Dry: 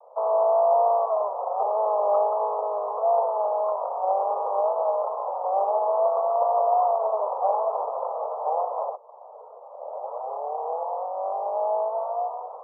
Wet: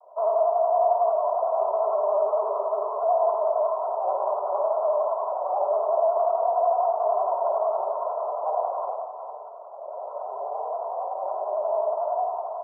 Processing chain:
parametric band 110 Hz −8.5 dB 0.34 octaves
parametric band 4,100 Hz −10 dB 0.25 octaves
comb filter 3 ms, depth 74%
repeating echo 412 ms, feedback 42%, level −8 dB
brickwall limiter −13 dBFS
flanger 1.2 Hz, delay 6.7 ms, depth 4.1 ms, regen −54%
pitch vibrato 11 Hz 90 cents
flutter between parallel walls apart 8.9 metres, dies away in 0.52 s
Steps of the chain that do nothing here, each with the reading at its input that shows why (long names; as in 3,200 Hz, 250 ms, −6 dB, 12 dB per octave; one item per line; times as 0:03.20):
parametric band 110 Hz: nothing at its input below 380 Hz
parametric band 4,100 Hz: nothing at its input above 1,300 Hz